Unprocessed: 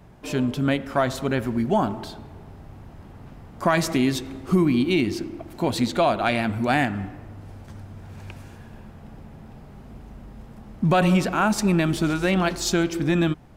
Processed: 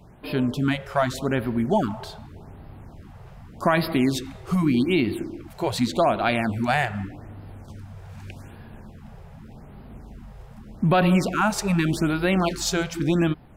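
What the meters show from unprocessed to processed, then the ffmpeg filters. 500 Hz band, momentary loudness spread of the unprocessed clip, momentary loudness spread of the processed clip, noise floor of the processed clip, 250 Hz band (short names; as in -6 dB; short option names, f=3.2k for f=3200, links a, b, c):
-0.5 dB, 21 LU, 21 LU, -45 dBFS, -1.0 dB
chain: -af "afftfilt=real='re*(1-between(b*sr/1024,240*pow(7400/240,0.5+0.5*sin(2*PI*0.84*pts/sr))/1.41,240*pow(7400/240,0.5+0.5*sin(2*PI*0.84*pts/sr))*1.41))':imag='im*(1-between(b*sr/1024,240*pow(7400/240,0.5+0.5*sin(2*PI*0.84*pts/sr))/1.41,240*pow(7400/240,0.5+0.5*sin(2*PI*0.84*pts/sr))*1.41))':win_size=1024:overlap=0.75"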